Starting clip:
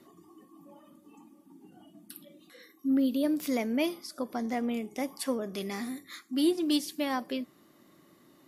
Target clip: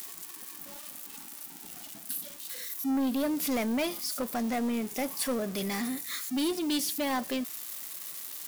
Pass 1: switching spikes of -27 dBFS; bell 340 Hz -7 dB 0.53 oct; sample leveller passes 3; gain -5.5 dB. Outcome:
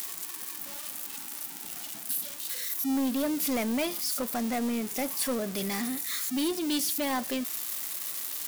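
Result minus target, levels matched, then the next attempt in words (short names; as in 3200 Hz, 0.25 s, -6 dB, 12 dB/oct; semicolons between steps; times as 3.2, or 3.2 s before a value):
switching spikes: distortion +9 dB
switching spikes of -36.5 dBFS; bell 340 Hz -7 dB 0.53 oct; sample leveller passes 3; gain -5.5 dB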